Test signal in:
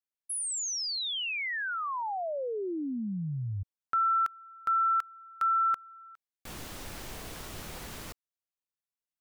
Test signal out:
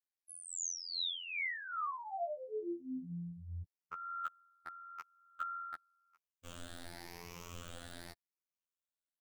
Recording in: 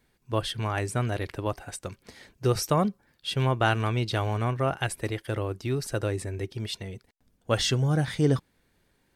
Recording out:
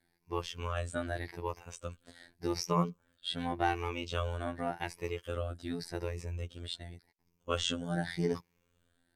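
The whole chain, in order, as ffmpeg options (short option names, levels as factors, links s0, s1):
-filter_complex "[0:a]afftfilt=real='re*pow(10,11/40*sin(2*PI*(0.79*log(max(b,1)*sr/1024/100)/log(2)-(0.87)*(pts-256)/sr)))':imag='im*pow(10,11/40*sin(2*PI*(0.79*log(max(b,1)*sr/1024/100)/log(2)-(0.87)*(pts-256)/sr)))':win_size=1024:overlap=0.75,acrossover=split=7900[s0][s1];[s1]acompressor=threshold=0.00282:ratio=4:attack=1:release=60[s2];[s0][s2]amix=inputs=2:normalize=0,afftfilt=real='hypot(re,im)*cos(PI*b)':imag='0':win_size=2048:overlap=0.75,volume=0.562"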